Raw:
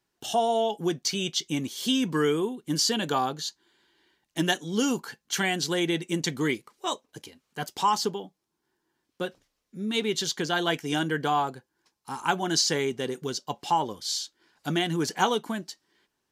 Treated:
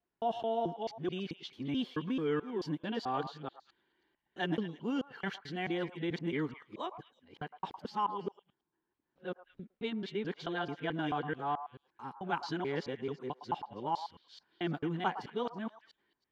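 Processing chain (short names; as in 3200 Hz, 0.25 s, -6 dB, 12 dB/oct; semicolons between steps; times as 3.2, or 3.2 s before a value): local time reversal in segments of 0.218 s; air absorption 380 m; delay with a stepping band-pass 0.109 s, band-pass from 910 Hz, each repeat 1.4 oct, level -9 dB; gain -7 dB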